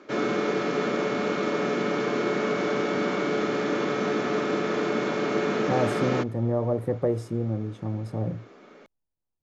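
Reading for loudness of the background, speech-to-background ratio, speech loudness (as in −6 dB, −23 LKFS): −26.5 LKFS, −2.0 dB, −28.5 LKFS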